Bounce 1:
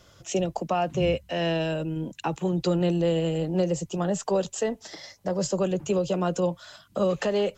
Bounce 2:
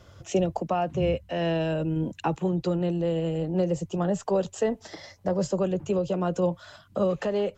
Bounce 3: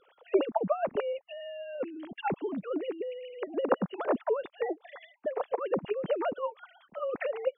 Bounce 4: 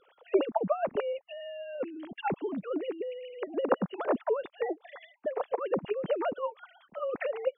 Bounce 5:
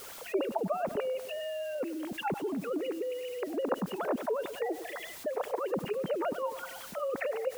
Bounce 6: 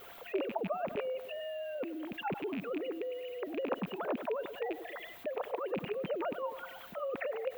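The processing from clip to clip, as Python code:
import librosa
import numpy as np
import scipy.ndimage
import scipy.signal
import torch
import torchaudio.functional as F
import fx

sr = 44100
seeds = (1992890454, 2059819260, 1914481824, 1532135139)

y1 = fx.high_shelf(x, sr, hz=2700.0, db=-9.0)
y1 = fx.rider(y1, sr, range_db=4, speed_s=0.5)
y1 = fx.peak_eq(y1, sr, hz=89.0, db=10.5, octaves=0.34)
y2 = fx.sine_speech(y1, sr)
y2 = fx.hpss(y2, sr, part='harmonic', gain_db=-15)
y2 = y2 * 10.0 ** (2.0 / 20.0)
y3 = y2
y4 = fx.dmg_noise_colour(y3, sr, seeds[0], colour='white', level_db=-60.0)
y4 = fx.echo_feedback(y4, sr, ms=99, feedback_pct=51, wet_db=-19.5)
y4 = fx.env_flatten(y4, sr, amount_pct=50)
y4 = y4 * 10.0 ** (-6.5 / 20.0)
y5 = fx.rattle_buzz(y4, sr, strikes_db=-41.0, level_db=-28.0)
y5 = y5 + 10.0 ** (-57.0 / 20.0) * np.sin(2.0 * np.pi * 700.0 * np.arange(len(y5)) / sr)
y5 = fx.band_shelf(y5, sr, hz=7500.0, db=-14.5, octaves=1.7)
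y5 = y5 * 10.0 ** (-3.5 / 20.0)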